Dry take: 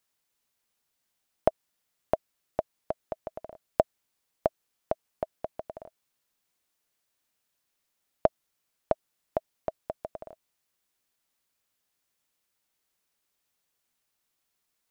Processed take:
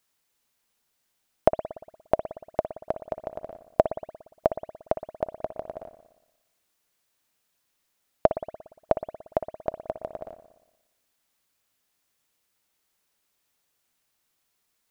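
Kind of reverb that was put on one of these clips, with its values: spring tank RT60 1 s, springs 58 ms, chirp 50 ms, DRR 9.5 dB; gain +4 dB

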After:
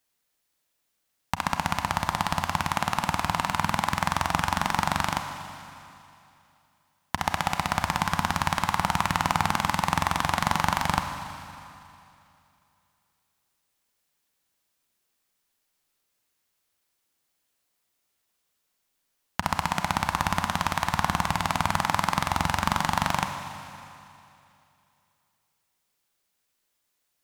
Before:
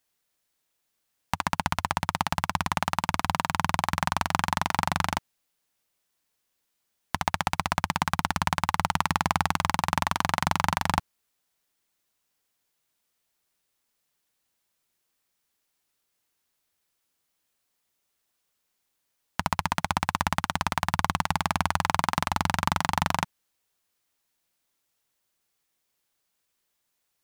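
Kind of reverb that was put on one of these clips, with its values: Schroeder reverb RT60 2.7 s, combs from 31 ms, DRR 6 dB

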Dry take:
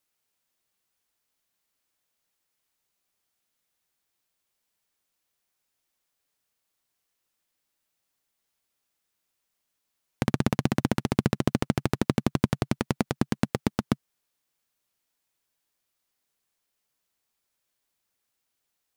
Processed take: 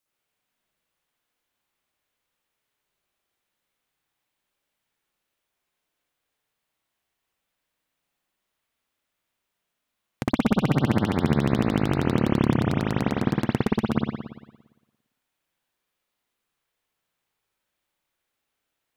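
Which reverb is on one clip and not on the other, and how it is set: spring tank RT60 1.1 s, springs 57 ms, chirp 35 ms, DRR -7 dB; gain -4 dB

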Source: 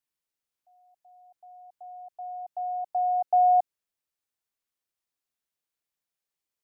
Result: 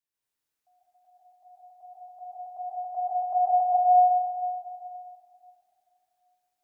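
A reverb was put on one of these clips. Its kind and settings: plate-style reverb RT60 2.8 s, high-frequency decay 0.9×, pre-delay 0.11 s, DRR -9 dB; gain -5.5 dB

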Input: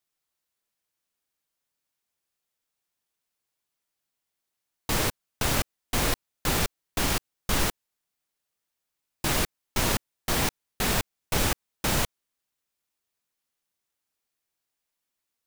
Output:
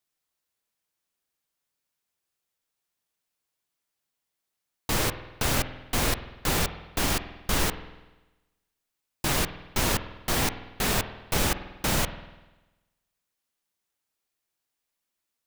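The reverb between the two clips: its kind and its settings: spring tank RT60 1.1 s, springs 49 ms, chirp 60 ms, DRR 11 dB

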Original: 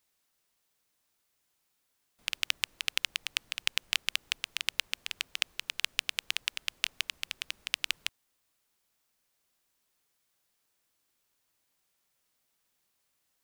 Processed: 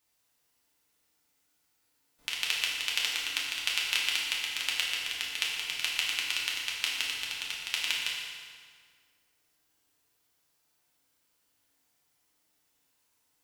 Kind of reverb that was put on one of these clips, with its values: FDN reverb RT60 1.9 s, low-frequency decay 1.1×, high-frequency decay 0.8×, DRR -5 dB; gain -2.5 dB

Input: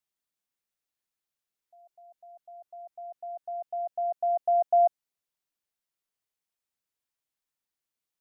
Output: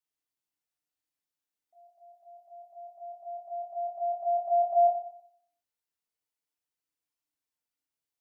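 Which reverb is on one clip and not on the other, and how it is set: FDN reverb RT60 0.66 s, low-frequency decay 0.95×, high-frequency decay 0.95×, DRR -3.5 dB; gain -8 dB

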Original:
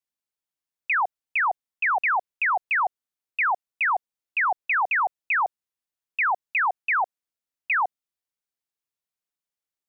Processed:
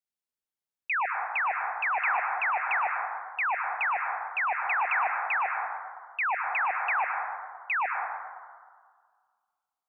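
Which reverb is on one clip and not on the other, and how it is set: plate-style reverb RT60 1.8 s, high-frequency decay 0.25×, pre-delay 95 ms, DRR 2 dB; gain -5.5 dB

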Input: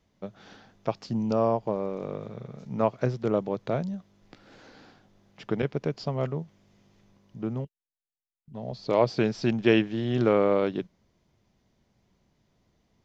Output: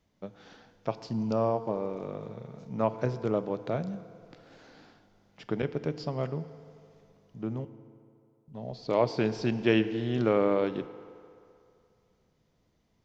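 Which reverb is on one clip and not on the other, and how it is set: FDN reverb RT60 2.6 s, low-frequency decay 0.75×, high-frequency decay 0.7×, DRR 12 dB; gain -3 dB

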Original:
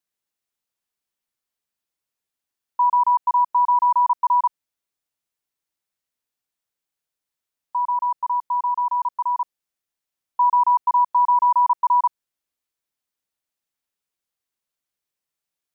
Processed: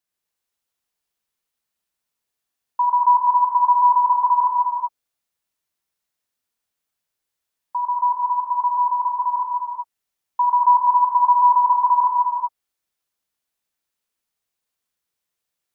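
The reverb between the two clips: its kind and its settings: non-linear reverb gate 0.42 s flat, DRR -1.5 dB

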